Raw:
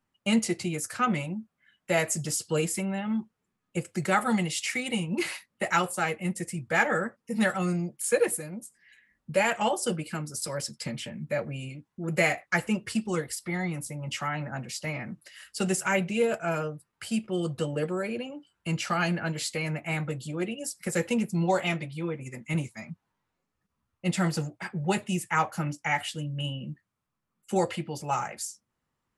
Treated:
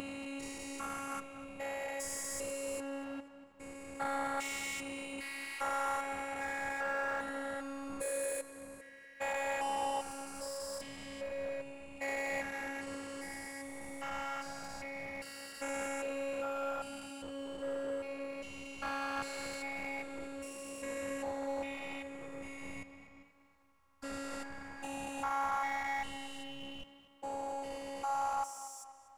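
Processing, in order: stepped spectrum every 0.4 s; robotiser 276 Hz; power-law curve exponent 0.7; fifteen-band EQ 100 Hz +4 dB, 250 Hz -12 dB, 1000 Hz +8 dB; tape echo 0.241 s, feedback 51%, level -13 dB, low-pass 5100 Hz; gain -5.5 dB

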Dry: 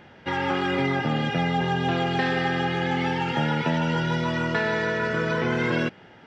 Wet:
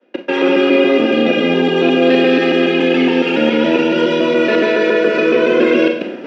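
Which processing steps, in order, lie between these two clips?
local time reversal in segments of 0.14 s; reverse; upward compressor, threshold -29 dBFS; reverse; Schroeder reverb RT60 0.63 s, combs from 31 ms, DRR 5.5 dB; expander -34 dBFS; steep high-pass 190 Hz 48 dB/oct; notch 840 Hz, Q 5.3; small resonant body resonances 340/510/2500 Hz, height 14 dB, ringing for 20 ms; dynamic EQ 3200 Hz, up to +6 dB, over -38 dBFS, Q 1; in parallel at -1.5 dB: limiter -8 dBFS, peak gain reduction 6 dB; on the sum: bell 320 Hz +2 dB; notches 60/120/180/240 Hz; gain -3 dB

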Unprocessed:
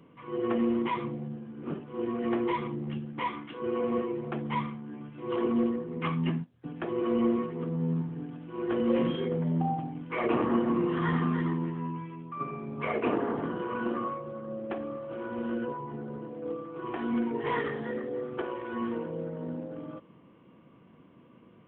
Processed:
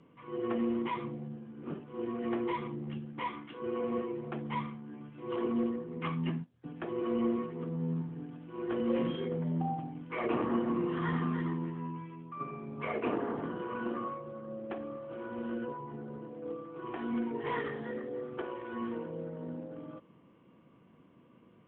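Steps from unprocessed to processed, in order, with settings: steep low-pass 8600 Hz; gain -4.5 dB

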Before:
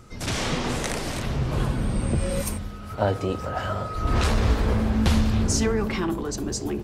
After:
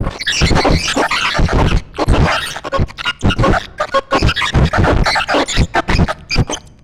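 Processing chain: random spectral dropouts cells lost 85%; in parallel at -5 dB: hard clip -23 dBFS, distortion -11 dB; on the sum: frequency shift -180 Hz; fuzz box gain 44 dB, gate -47 dBFS; air absorption 100 m; on a send at -22 dB: reverb RT60 1.3 s, pre-delay 6 ms; on the sum: harmoniser -12 st 0 dB, +5 st -12 dB; gain +2 dB

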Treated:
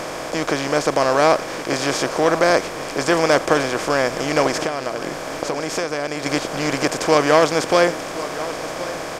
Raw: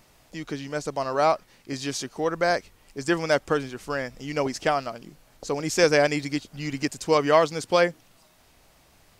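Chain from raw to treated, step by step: per-bin compression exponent 0.4; 4.61–6.26 compressor 12:1, threshold -21 dBFS, peak gain reduction 12 dB; echo 1.07 s -15 dB; gain +1 dB

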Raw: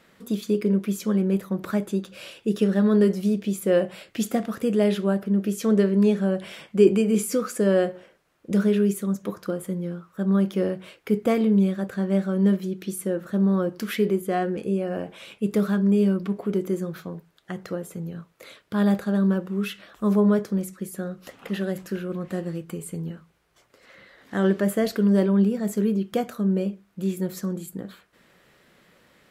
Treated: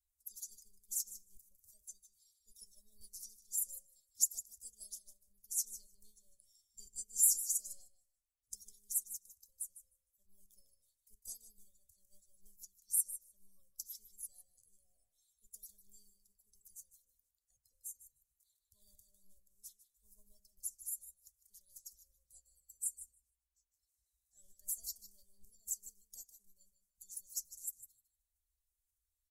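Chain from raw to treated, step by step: bin magnitudes rounded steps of 30 dB; in parallel at -7.5 dB: soft clip -17.5 dBFS, distortion -14 dB; on the sum: inverse Chebyshev band-stop 160–2900 Hz, stop band 50 dB; bell 73 Hz -5.5 dB 2.8 oct; on a send: feedback echo 0.153 s, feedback 20%, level -9 dB; on the sum: dynamic EQ 5800 Hz, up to +7 dB, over -60 dBFS, Q 2; upward expander 1.5:1, over -57 dBFS; gain +2.5 dB

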